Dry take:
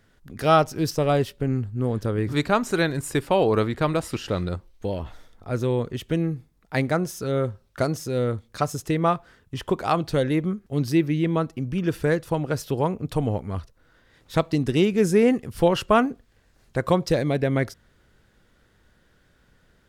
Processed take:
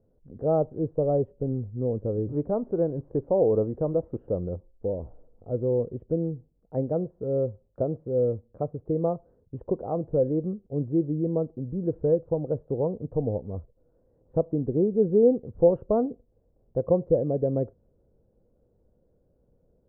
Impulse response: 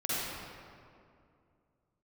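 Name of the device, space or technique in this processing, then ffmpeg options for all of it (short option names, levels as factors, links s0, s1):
under water: -af "lowpass=f=680:w=0.5412,lowpass=f=680:w=1.3066,equalizer=f=500:t=o:w=0.44:g=8,volume=0.562"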